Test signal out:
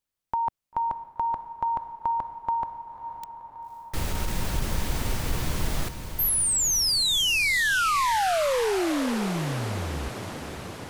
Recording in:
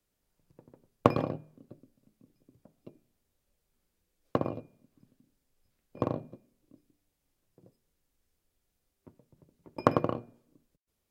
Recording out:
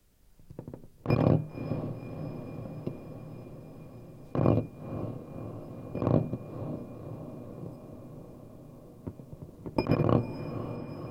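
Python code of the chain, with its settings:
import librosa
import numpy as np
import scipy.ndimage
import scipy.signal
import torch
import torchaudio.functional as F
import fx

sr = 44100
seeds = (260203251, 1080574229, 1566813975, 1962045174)

y = fx.low_shelf(x, sr, hz=180.0, db=11.0)
y = fx.over_compress(y, sr, threshold_db=-31.0, ratio=-1.0)
y = fx.echo_diffused(y, sr, ms=532, feedback_pct=72, wet_db=-11.0)
y = y * librosa.db_to_amplitude(5.5)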